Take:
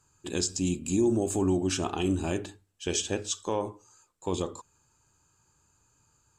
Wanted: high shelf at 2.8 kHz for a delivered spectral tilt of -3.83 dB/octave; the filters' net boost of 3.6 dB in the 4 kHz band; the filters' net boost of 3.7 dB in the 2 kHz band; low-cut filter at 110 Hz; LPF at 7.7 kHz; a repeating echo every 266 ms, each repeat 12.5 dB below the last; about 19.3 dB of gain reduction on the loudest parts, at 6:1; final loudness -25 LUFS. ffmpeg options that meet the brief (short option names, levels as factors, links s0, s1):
-af "highpass=110,lowpass=7700,equalizer=f=2000:t=o:g=5,highshelf=f=2800:g=-6,equalizer=f=4000:t=o:g=8.5,acompressor=threshold=0.00708:ratio=6,aecho=1:1:266|532|798:0.237|0.0569|0.0137,volume=11.2"